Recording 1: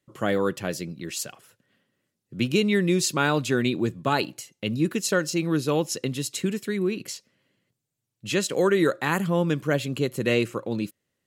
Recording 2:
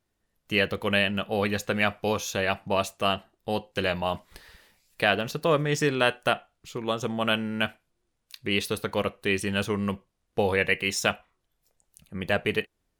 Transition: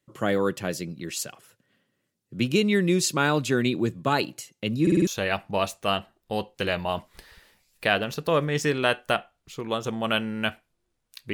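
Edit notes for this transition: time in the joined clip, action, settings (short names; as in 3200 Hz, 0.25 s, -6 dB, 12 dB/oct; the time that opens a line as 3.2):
recording 1
4.82 stutter in place 0.05 s, 5 plays
5.07 switch to recording 2 from 2.24 s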